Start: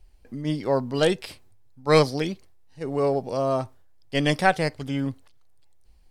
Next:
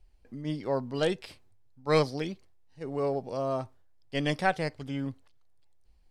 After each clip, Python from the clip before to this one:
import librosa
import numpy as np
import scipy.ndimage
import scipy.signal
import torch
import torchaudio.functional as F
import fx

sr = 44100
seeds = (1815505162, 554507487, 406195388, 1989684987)

y = fx.high_shelf(x, sr, hz=10000.0, db=-9.5)
y = y * 10.0 ** (-6.5 / 20.0)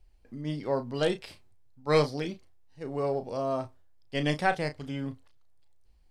y = fx.doubler(x, sr, ms=34.0, db=-10.0)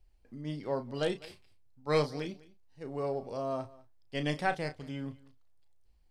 y = x + 10.0 ** (-21.5 / 20.0) * np.pad(x, (int(202 * sr / 1000.0), 0))[:len(x)]
y = y * 10.0 ** (-4.5 / 20.0)